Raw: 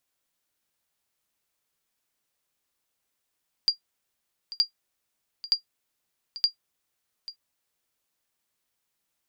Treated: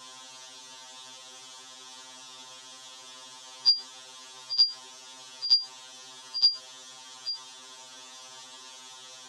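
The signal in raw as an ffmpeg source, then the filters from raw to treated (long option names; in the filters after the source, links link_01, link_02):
-f lavfi -i "aevalsrc='0.251*(sin(2*PI*4780*mod(t,0.92))*exp(-6.91*mod(t,0.92)/0.11)+0.15*sin(2*PI*4780*max(mod(t,0.92)-0.84,0))*exp(-6.91*max(mod(t,0.92)-0.84,0)/0.11))':duration=3.68:sample_rate=44100"
-af "aeval=exprs='val(0)+0.5*0.0141*sgn(val(0))':channel_layout=same,highpass=frequency=120:width=0.5412,highpass=frequency=120:width=1.3066,equalizer=frequency=120:width_type=q:width=4:gain=-7,equalizer=frequency=180:width_type=q:width=4:gain=-6,equalizer=frequency=960:width_type=q:width=4:gain=10,equalizer=frequency=2200:width_type=q:width=4:gain=-7,equalizer=frequency=3400:width_type=q:width=4:gain=9,equalizer=frequency=6000:width_type=q:width=4:gain=5,lowpass=frequency=7600:width=0.5412,lowpass=frequency=7600:width=1.3066,afftfilt=real='re*2.45*eq(mod(b,6),0)':imag='im*2.45*eq(mod(b,6),0)':win_size=2048:overlap=0.75"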